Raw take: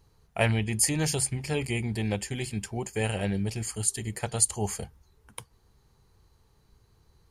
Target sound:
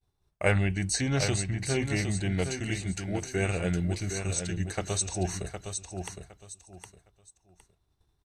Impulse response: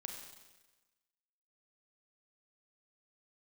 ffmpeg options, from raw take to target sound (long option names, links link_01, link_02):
-filter_complex "[0:a]agate=range=-33dB:threshold=-52dB:ratio=3:detection=peak,aecho=1:1:675|1350|2025:0.422|0.097|0.0223,asetrate=39073,aresample=44100,acrossover=split=6900[link_01][link_02];[link_02]acompressor=threshold=-46dB:ratio=6[link_03];[link_01][link_03]amix=inputs=2:normalize=0"